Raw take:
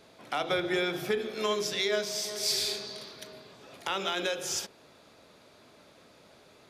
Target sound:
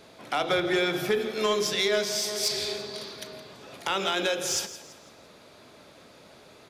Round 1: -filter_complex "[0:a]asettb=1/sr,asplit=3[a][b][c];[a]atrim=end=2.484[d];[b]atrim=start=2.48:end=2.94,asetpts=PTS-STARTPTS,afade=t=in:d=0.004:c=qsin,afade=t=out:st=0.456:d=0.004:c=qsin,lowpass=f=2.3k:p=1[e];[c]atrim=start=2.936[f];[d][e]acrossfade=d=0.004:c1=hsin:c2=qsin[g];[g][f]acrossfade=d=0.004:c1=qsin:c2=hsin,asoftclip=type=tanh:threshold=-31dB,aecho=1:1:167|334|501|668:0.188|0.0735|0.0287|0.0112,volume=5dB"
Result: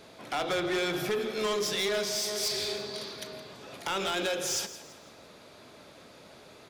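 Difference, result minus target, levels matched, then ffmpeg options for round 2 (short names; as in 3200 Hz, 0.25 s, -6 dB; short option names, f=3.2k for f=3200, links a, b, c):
soft clip: distortion +12 dB
-filter_complex "[0:a]asettb=1/sr,asplit=3[a][b][c];[a]atrim=end=2.484[d];[b]atrim=start=2.48:end=2.94,asetpts=PTS-STARTPTS,afade=t=in:d=0.004:c=qsin,afade=t=out:st=0.456:d=0.004:c=qsin,lowpass=f=2.3k:p=1[e];[c]atrim=start=2.936[f];[d][e]acrossfade=d=0.004:c1=hsin:c2=qsin[g];[g][f]acrossfade=d=0.004:c1=qsin:c2=hsin,asoftclip=type=tanh:threshold=-21dB,aecho=1:1:167|334|501|668:0.188|0.0735|0.0287|0.0112,volume=5dB"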